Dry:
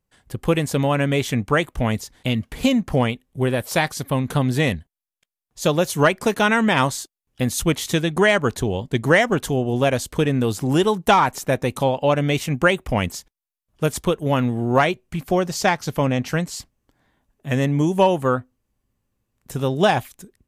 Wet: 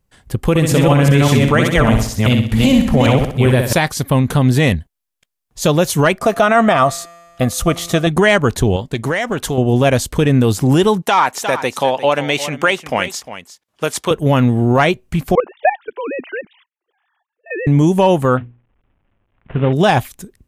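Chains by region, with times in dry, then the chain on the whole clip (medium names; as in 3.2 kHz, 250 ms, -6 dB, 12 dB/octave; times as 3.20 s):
0.49–3.73 s: chunks repeated in reverse 198 ms, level -2 dB + flutter echo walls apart 10.8 m, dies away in 0.5 s
6.18–8.07 s: feedback comb 170 Hz, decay 1.8 s, mix 40% + small resonant body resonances 680/1200 Hz, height 17 dB, ringing for 35 ms
8.76–9.58 s: bass shelf 340 Hz -7 dB + compression 5:1, threshold -22 dBFS + loudspeaker Doppler distortion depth 0.12 ms
11.02–14.11 s: frequency weighting A + delay 354 ms -14 dB
15.35–17.67 s: formants replaced by sine waves + high-pass 380 Hz 24 dB/octave + level held to a coarse grid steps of 15 dB
18.37–19.73 s: CVSD coder 16 kbps + hum notches 60/120/180/240/300/360/420/480 Hz
whole clip: bass shelf 120 Hz +6 dB; peak limiter -10 dBFS; trim +7 dB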